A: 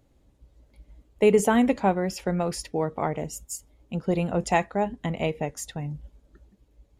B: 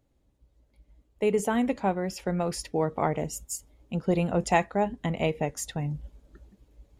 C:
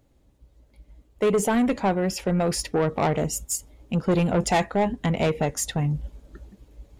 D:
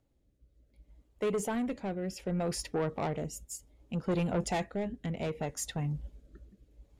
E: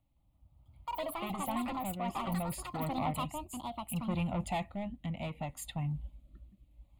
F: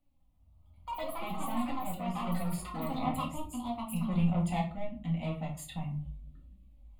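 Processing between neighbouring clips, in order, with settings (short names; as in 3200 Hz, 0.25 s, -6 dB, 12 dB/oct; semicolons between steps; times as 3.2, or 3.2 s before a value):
vocal rider within 5 dB 2 s; gain -2.5 dB
soft clip -24 dBFS, distortion -10 dB; gain +8 dB
rotary speaker horn 0.65 Hz; gain -8.5 dB
echoes that change speed 0.166 s, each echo +7 st, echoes 2; fixed phaser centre 1600 Hz, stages 6
flange 0.3 Hz, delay 3.4 ms, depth 3.5 ms, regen +55%; shoebox room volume 280 m³, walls furnished, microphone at 2 m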